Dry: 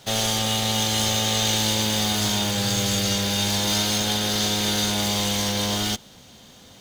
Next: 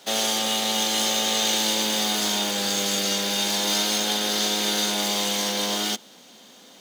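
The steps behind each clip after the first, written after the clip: high-pass 220 Hz 24 dB/octave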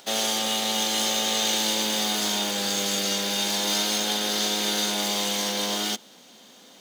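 upward compressor, threshold -48 dBFS; trim -1.5 dB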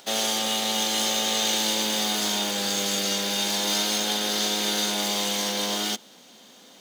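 no audible change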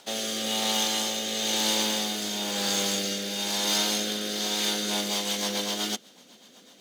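rotary cabinet horn 1 Hz, later 8 Hz, at 4.48 s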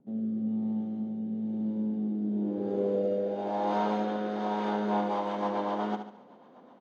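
low-pass sweep 210 Hz -> 950 Hz, 1.91–3.85 s; feedback delay 72 ms, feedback 43%, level -8.5 dB

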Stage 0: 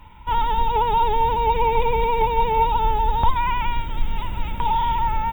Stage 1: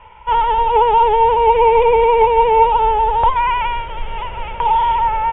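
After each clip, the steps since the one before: steep low-pass 3.3 kHz 96 dB/octave; resonant low shelf 360 Hz -9 dB, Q 3; trim +5.5 dB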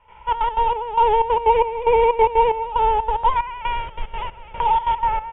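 trance gate ".xxx.x.xx.." 185 bpm -12 dB; trim -3 dB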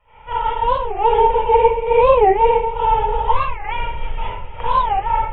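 reverberation RT60 0.60 s, pre-delay 33 ms, DRR -5.5 dB; warped record 45 rpm, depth 250 cents; trim -6 dB

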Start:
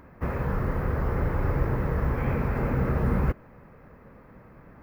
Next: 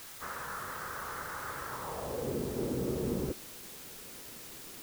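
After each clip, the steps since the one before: band-pass sweep 1.4 kHz -> 360 Hz, 1.69–2.35 s; word length cut 8-bit, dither triangular; bass shelf 160 Hz +5 dB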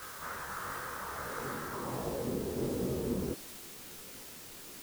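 reverse echo 829 ms -7.5 dB; detune thickener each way 50 cents; trim +3 dB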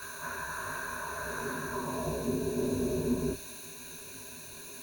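rippled EQ curve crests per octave 1.5, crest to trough 16 dB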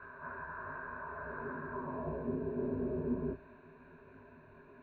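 low-pass 1.7 kHz 24 dB/octave; trim -5 dB

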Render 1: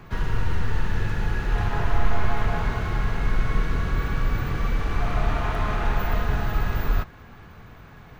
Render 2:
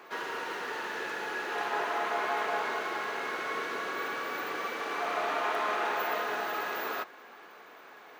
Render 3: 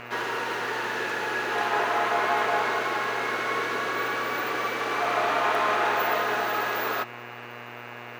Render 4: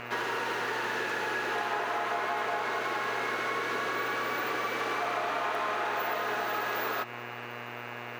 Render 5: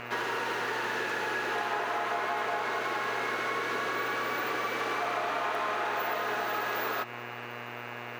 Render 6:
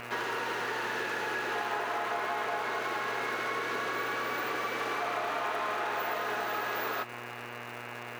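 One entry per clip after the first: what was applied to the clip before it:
high-pass 360 Hz 24 dB/octave
mains buzz 120 Hz, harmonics 24, -49 dBFS -1 dB/octave; trim +6.5 dB
compression, threshold -28 dBFS, peak gain reduction 8 dB
no audible change
crackle 360 per s -39 dBFS; trim -1.5 dB

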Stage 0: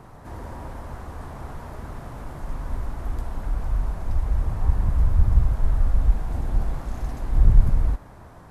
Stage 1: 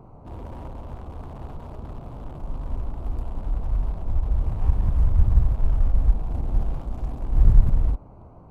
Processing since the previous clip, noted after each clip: local Wiener filter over 25 samples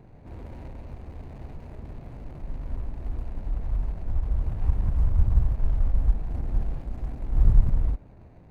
median filter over 41 samples; trim -3 dB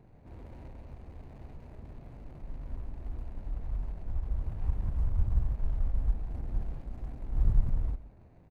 delay 131 ms -16.5 dB; trim -7 dB

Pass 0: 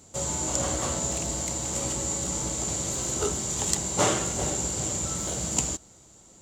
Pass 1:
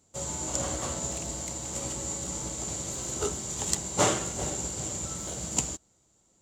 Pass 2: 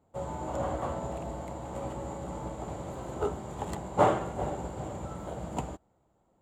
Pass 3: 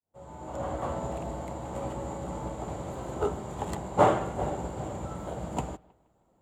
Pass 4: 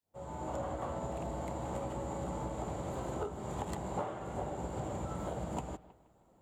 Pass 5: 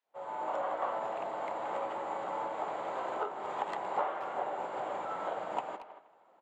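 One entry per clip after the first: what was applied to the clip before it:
upward expansion 1.5:1, over -47 dBFS
FFT filter 360 Hz 0 dB, 800 Hz +6 dB, 3.5 kHz -13 dB, 5.9 kHz -27 dB, 11 kHz -14 dB
fade-in on the opening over 0.99 s; bucket-brigade echo 158 ms, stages 4096, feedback 32%, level -23 dB; trim +2 dB
compression 20:1, threshold -36 dBFS, peak gain reduction 22 dB; trim +2 dB
band-pass 740–2500 Hz; speakerphone echo 230 ms, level -12 dB; trim +9 dB

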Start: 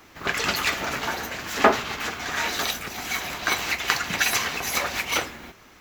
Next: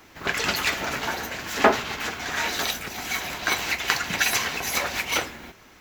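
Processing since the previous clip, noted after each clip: band-stop 1.2 kHz, Q 17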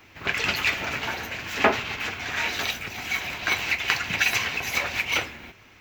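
fifteen-band graphic EQ 100 Hz +9 dB, 2.5 kHz +8 dB, 10 kHz -9 dB; trim -3.5 dB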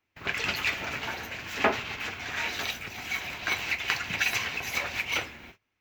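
gate -46 dBFS, range -23 dB; trim -4.5 dB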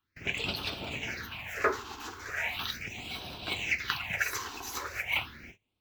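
phase shifter stages 6, 0.38 Hz, lowest notch 150–2000 Hz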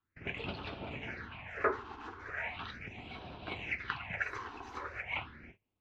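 low-pass 1.9 kHz 12 dB/octave; trim -2.5 dB

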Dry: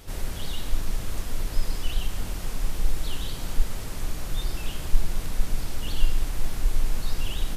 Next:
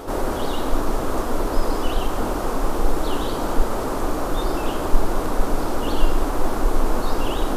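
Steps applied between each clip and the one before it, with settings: high-order bell 580 Hz +16 dB 2.9 oct; reverse; upward compressor, threshold -23 dBFS; reverse; trim +2.5 dB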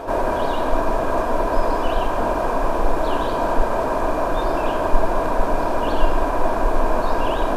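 treble shelf 5.9 kHz -9 dB; small resonant body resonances 660/970/1600/2400 Hz, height 12 dB, ringing for 25 ms; trim -1 dB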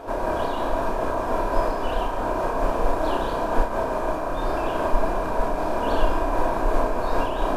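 flutter echo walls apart 5.5 m, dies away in 0.32 s; random flutter of the level, depth 55%; trim -2 dB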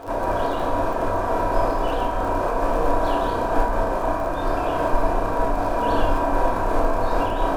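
crackle 41 per s -31 dBFS; reverberation RT60 1.2 s, pre-delay 5 ms, DRR 3 dB

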